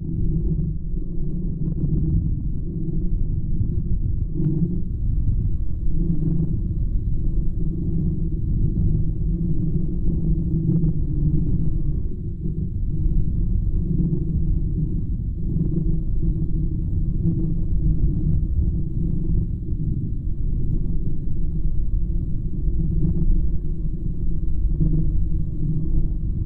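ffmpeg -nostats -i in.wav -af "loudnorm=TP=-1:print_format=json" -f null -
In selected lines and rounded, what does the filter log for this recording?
"input_i" : "-25.1",
"input_tp" : "-7.6",
"input_lra" : "2.2",
"input_thresh" : "-35.1",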